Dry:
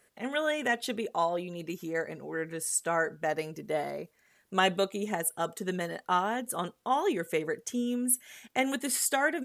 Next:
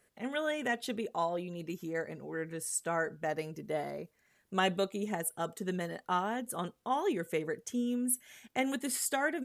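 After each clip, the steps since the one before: low shelf 270 Hz +6 dB; gain -5 dB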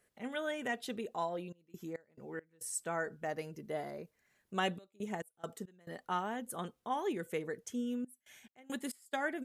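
step gate "xxxxxxx.x.x.xxx" 69 bpm -24 dB; gain -4 dB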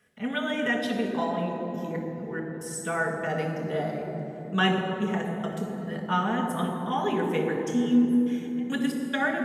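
reverb RT60 3.5 s, pre-delay 3 ms, DRR -0.5 dB

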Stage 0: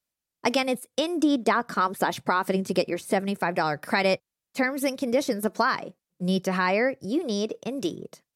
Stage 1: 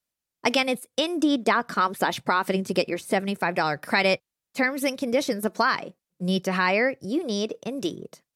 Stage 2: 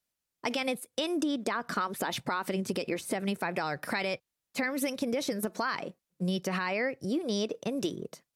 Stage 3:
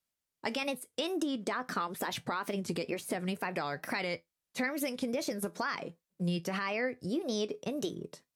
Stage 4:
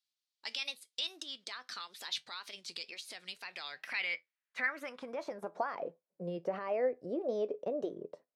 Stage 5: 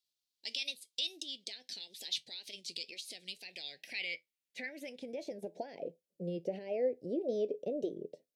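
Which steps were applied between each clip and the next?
dynamic EQ 2900 Hz, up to +5 dB, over -38 dBFS, Q 0.87
limiter -16.5 dBFS, peak gain reduction 9 dB; compressor, threshold -27 dBFS, peak gain reduction 7 dB
wow and flutter 130 cents; resonator 84 Hz, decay 0.15 s, harmonics all, mix 50%
band-pass sweep 4100 Hz -> 570 Hz, 3.46–5.87; gain +5.5 dB
Butterworth band-stop 1200 Hz, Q 0.56; gain +2 dB

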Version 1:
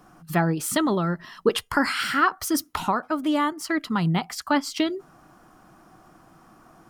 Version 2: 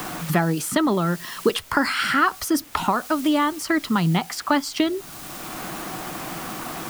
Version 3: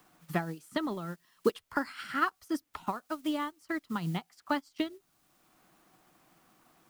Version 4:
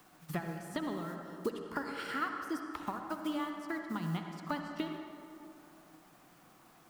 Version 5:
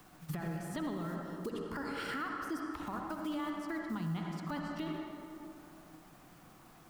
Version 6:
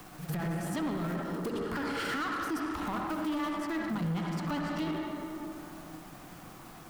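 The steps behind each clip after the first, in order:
in parallel at -10 dB: requantised 6-bit, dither triangular; on the sum: three-band squash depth 70%
upward expander 2.5:1, over -32 dBFS; gain -5.5 dB
compressor 2:1, threshold -42 dBFS, peak gain reduction 11.5 dB; on a send at -3.5 dB: reverb RT60 2.9 s, pre-delay 53 ms; on the sum: gain +2 dB
low shelf 130 Hz +12 dB; limiter -31.5 dBFS, peak gain reduction 11.5 dB; gain +1.5 dB
sample leveller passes 2; pre-echo 0.104 s -12.5 dB; gain +1.5 dB

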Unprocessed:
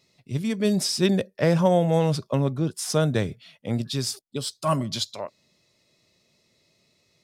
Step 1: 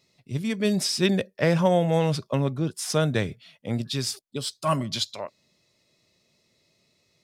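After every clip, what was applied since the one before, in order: dynamic EQ 2300 Hz, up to +5 dB, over -41 dBFS, Q 0.9; gain -1.5 dB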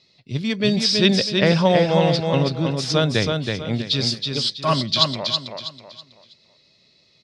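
synth low-pass 4300 Hz, resonance Q 2.6; on a send: feedback echo 0.324 s, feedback 33%, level -4.5 dB; on the sum: gain +3.5 dB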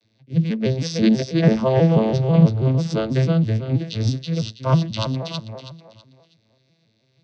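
arpeggiated vocoder minor triad, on A2, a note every 0.163 s; gain +2 dB

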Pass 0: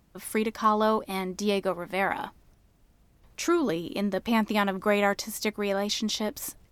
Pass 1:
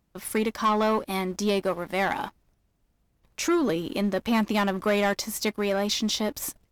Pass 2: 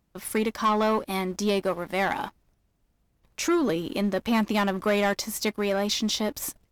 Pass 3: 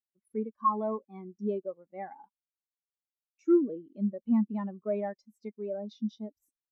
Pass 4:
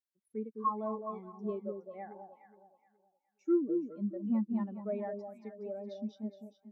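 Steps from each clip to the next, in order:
sample leveller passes 2; gain -4.5 dB
nothing audible
spectral expander 2.5:1
echo with dull and thin repeats by turns 0.209 s, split 880 Hz, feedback 52%, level -5 dB; gain -5.5 dB

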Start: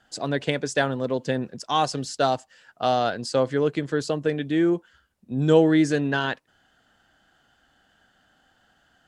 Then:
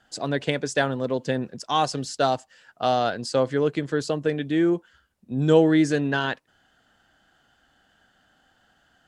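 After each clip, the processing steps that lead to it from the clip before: nothing audible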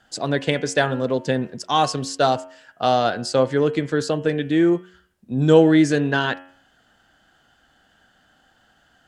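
de-hum 91.19 Hz, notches 36; gain +4 dB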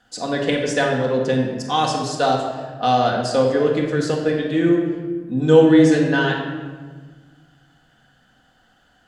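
shoebox room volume 1400 m³, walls mixed, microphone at 1.9 m; gain -2.5 dB

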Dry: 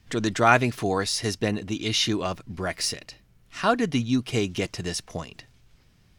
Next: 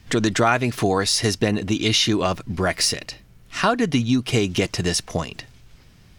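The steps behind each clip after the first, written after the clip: compressor 4:1, threshold -25 dBFS, peak gain reduction 11 dB; gain +9 dB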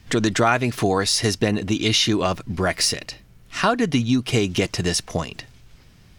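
nothing audible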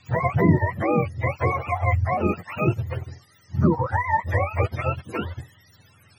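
spectrum mirrored in octaves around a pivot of 480 Hz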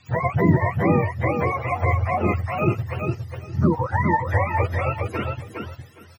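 feedback echo 0.411 s, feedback 18%, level -4.5 dB

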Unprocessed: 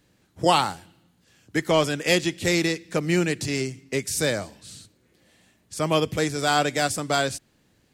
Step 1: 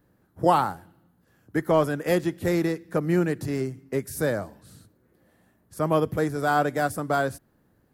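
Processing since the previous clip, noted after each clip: band shelf 4300 Hz -14.5 dB 2.3 oct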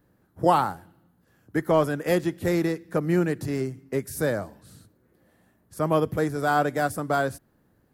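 nothing audible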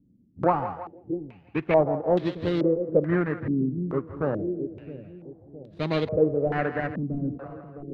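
median filter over 41 samples; split-band echo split 470 Hz, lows 0.663 s, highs 0.164 s, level -10.5 dB; stepped low-pass 2.3 Hz 240–3800 Hz; gain -1.5 dB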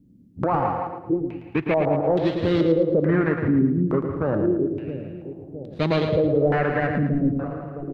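limiter -19.5 dBFS, peak gain reduction 11.5 dB; on a send: feedback echo 0.111 s, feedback 37%, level -7 dB; on the sum: gain +7 dB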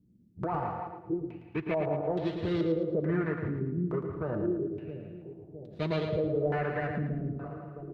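notch comb 270 Hz; reverb RT60 1.2 s, pre-delay 53 ms, DRR 18.5 dB; gain -8.5 dB

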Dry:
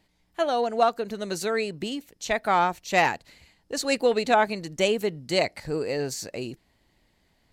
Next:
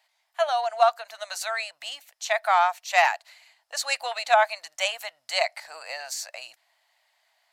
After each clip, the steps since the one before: elliptic high-pass 650 Hz, stop band 40 dB; gain +2.5 dB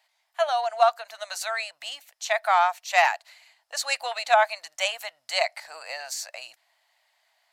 nothing audible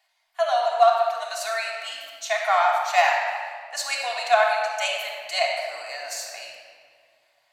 shoebox room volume 3300 m³, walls mixed, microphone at 3.3 m; gain -2.5 dB

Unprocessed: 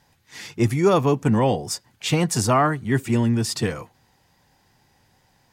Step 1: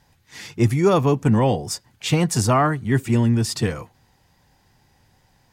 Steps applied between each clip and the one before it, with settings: low shelf 100 Hz +8 dB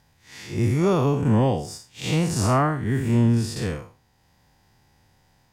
time blur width 0.146 s; transient shaper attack +2 dB, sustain -3 dB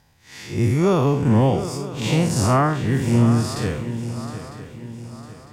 swung echo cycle 0.953 s, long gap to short 3:1, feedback 41%, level -12 dB; gain +2.5 dB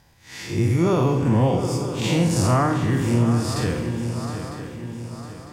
on a send at -7 dB: reverb RT60 1.5 s, pre-delay 3 ms; on the sum: compressor 1.5:1, threshold -25 dBFS, peak gain reduction 5.5 dB; gain +2 dB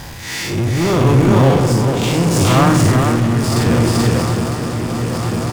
power-law curve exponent 0.5; echo 0.433 s -3 dB; tremolo 0.75 Hz, depth 37%; gain +1 dB

